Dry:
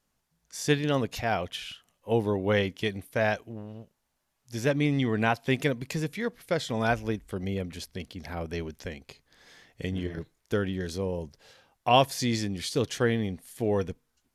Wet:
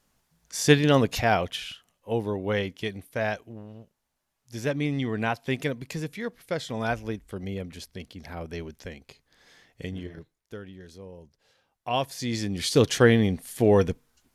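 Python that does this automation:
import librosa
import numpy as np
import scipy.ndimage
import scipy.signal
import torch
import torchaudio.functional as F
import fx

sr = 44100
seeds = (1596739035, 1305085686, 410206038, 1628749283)

y = fx.gain(x, sr, db=fx.line((1.2, 6.5), (2.12, -2.0), (9.83, -2.0), (10.6, -13.0), (11.19, -13.0), (12.2, -4.0), (12.76, 7.5)))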